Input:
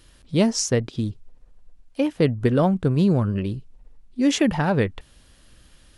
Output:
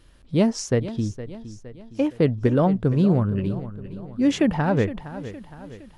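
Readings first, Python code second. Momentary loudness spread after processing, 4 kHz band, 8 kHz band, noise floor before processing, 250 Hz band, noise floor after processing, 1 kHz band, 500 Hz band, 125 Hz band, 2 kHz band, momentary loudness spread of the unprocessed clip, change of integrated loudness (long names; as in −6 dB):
18 LU, −5.5 dB, can't be measured, −54 dBFS, 0.0 dB, −49 dBFS, −0.5 dB, 0.0 dB, 0.0 dB, −2.5 dB, 11 LU, −0.5 dB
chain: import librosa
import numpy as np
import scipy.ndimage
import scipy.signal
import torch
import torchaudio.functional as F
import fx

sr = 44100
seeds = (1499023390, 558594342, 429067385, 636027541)

p1 = fx.high_shelf(x, sr, hz=2800.0, db=-9.0)
y = p1 + fx.echo_feedback(p1, sr, ms=464, feedback_pct=49, wet_db=-14, dry=0)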